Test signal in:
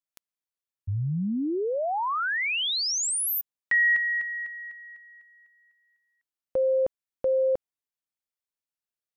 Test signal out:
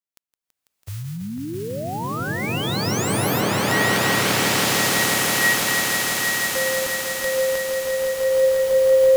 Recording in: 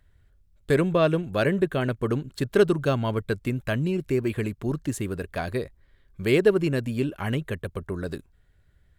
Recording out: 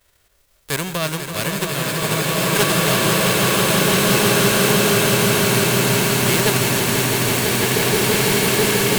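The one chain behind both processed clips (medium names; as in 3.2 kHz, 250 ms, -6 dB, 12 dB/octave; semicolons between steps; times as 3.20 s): formants flattened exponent 0.3; echo with a slow build-up 165 ms, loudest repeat 5, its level -8 dB; swelling reverb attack 2030 ms, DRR -6.5 dB; trim -2.5 dB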